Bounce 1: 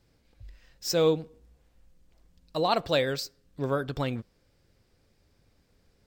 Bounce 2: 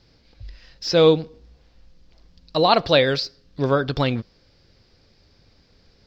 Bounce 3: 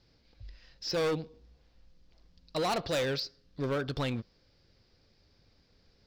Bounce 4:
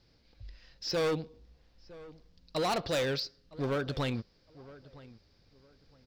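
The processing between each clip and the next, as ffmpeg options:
-filter_complex "[0:a]highshelf=f=6900:t=q:w=3:g=-13.5,acrossover=split=3900[s0][s1];[s1]acompressor=threshold=0.00891:ratio=4:attack=1:release=60[s2];[s0][s2]amix=inputs=2:normalize=0,volume=2.66"
-af "volume=7.94,asoftclip=hard,volume=0.126,volume=0.355"
-filter_complex "[0:a]asplit=2[s0][s1];[s1]adelay=962,lowpass=f=1900:p=1,volume=0.112,asplit=2[s2][s3];[s3]adelay=962,lowpass=f=1900:p=1,volume=0.25[s4];[s0][s2][s4]amix=inputs=3:normalize=0"

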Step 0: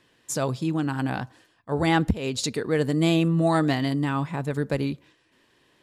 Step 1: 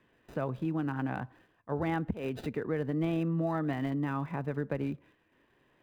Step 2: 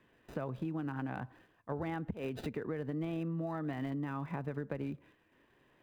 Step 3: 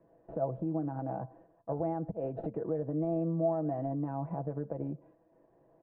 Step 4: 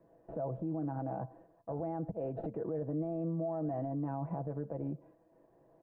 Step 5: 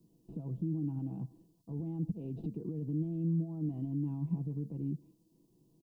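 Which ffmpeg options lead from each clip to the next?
-filter_complex "[0:a]acrossover=split=160|3600[s0][s1][s2];[s0]acompressor=threshold=0.0158:ratio=4[s3];[s1]acompressor=threshold=0.0562:ratio=4[s4];[s2]acompressor=threshold=0.002:ratio=4[s5];[s3][s4][s5]amix=inputs=3:normalize=0,acrossover=split=2900[s6][s7];[s7]acrusher=samples=40:mix=1:aa=0.000001[s8];[s6][s8]amix=inputs=2:normalize=0,volume=0.596"
-af "acompressor=threshold=0.02:ratio=6"
-af "aecho=1:1:6.1:0.56,alimiter=level_in=1.5:limit=0.0631:level=0:latency=1:release=62,volume=0.668,lowpass=f=660:t=q:w=3.5"
-af "alimiter=level_in=1.78:limit=0.0631:level=0:latency=1:release=17,volume=0.562"
-af "firequalizer=gain_entry='entry(110,0);entry(170,7);entry(400,-5);entry(580,-25);entry(970,-14);entry(1600,-27);entry(2800,3);entry(4600,11)':delay=0.05:min_phase=1"

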